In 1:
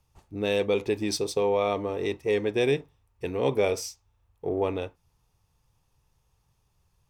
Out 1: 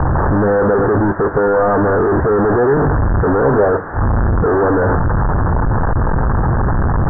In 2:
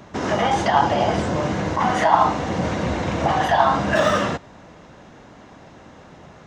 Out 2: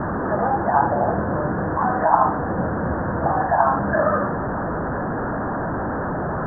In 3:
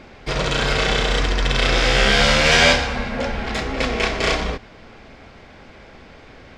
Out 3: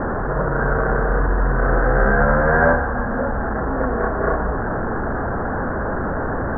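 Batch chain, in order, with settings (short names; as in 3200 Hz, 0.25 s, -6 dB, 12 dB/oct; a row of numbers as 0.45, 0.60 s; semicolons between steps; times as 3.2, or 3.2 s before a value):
delta modulation 64 kbps, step -17 dBFS; steep low-pass 1700 Hz 96 dB/oct; normalise peaks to -2 dBFS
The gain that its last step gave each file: +10.5, -0.5, +2.0 dB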